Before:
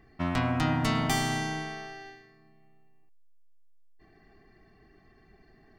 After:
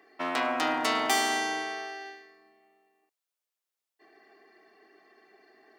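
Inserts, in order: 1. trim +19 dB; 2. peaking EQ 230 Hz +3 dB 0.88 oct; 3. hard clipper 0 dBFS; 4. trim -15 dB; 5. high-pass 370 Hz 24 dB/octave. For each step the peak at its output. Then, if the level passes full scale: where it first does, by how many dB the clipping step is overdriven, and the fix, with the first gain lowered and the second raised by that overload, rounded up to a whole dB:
+5.0 dBFS, +6.0 dBFS, 0.0 dBFS, -15.0 dBFS, -12.5 dBFS; step 1, 6.0 dB; step 1 +13 dB, step 4 -9 dB

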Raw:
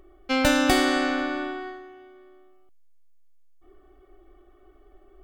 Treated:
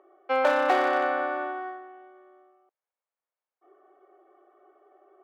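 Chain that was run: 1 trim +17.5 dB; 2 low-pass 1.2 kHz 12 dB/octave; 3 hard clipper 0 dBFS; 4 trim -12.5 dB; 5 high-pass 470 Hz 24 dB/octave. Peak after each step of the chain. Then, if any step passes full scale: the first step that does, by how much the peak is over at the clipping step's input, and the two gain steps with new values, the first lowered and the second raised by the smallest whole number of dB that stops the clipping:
+11.0 dBFS, +9.0 dBFS, 0.0 dBFS, -12.5 dBFS, -10.5 dBFS; step 1, 9.0 dB; step 1 +8.5 dB, step 4 -3.5 dB

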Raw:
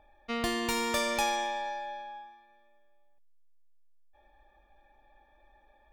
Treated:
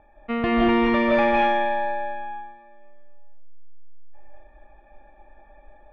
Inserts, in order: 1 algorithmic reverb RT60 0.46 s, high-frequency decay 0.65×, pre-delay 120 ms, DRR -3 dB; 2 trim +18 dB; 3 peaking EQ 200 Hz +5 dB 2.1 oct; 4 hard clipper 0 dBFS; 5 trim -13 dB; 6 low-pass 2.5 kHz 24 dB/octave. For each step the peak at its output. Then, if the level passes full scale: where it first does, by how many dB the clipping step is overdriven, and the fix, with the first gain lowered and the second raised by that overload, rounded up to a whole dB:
-12.0 dBFS, +6.0 dBFS, +6.5 dBFS, 0.0 dBFS, -13.0 dBFS, -12.0 dBFS; step 2, 6.5 dB; step 2 +11 dB, step 5 -6 dB

